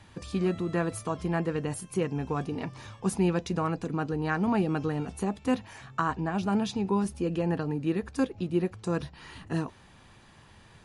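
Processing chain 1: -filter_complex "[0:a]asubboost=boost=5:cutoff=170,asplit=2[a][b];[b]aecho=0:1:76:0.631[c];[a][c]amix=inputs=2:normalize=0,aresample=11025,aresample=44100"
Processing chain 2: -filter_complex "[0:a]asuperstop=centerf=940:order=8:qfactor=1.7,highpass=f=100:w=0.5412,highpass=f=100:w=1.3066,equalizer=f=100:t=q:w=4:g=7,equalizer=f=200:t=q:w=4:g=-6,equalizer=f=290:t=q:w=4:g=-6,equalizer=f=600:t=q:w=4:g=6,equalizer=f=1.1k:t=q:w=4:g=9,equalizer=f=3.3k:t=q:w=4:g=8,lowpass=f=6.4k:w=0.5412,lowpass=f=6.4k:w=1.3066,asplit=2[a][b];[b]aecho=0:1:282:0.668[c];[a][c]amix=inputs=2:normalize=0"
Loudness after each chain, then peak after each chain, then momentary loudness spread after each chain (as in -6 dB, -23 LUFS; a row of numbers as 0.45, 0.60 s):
-25.5, -30.5 LUFS; -10.0, -14.5 dBFS; 8, 6 LU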